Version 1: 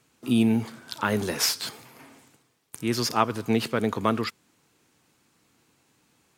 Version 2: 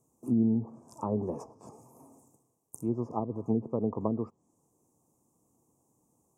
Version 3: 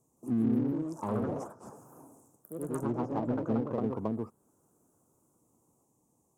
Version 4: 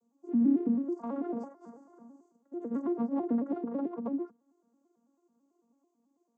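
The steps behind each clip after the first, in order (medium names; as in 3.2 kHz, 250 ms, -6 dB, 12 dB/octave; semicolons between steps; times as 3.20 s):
low-pass that closes with the level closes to 410 Hz, closed at -19 dBFS; inverse Chebyshev band-stop 1.4–4.3 kHz, stop band 40 dB; high-order bell 1.8 kHz +9.5 dB; trim -4 dB
ever faster or slower copies 170 ms, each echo +2 st, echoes 3; in parallel at -5.5 dB: overload inside the chain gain 34 dB; on the sum: trim -4.5 dB
vocoder on a broken chord minor triad, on A#3, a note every 110 ms; trim +1.5 dB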